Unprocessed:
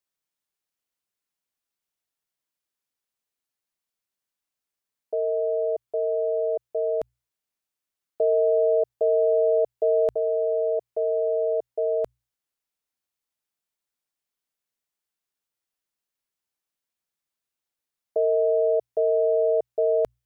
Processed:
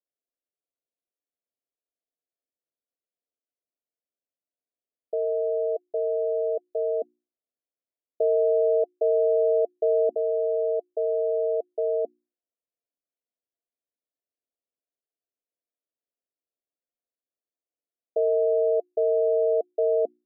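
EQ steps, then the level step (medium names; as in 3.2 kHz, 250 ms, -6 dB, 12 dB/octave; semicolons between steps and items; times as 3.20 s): steep high-pass 240 Hz 48 dB/octave; rippled Chebyshev low-pass 720 Hz, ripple 3 dB; hum notches 60/120/180/240/300/360 Hz; +1.0 dB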